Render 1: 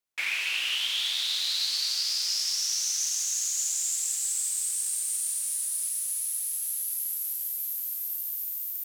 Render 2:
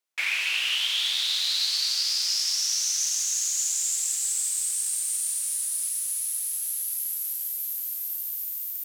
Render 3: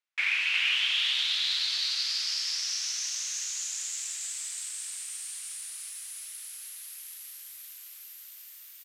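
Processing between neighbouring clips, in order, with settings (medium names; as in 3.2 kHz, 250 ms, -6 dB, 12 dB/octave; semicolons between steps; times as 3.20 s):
high-pass 390 Hz 6 dB/octave; treble shelf 11 kHz -3 dB; trim +3 dB
band-pass filter 2 kHz, Q 0.82; delay 361 ms -5 dB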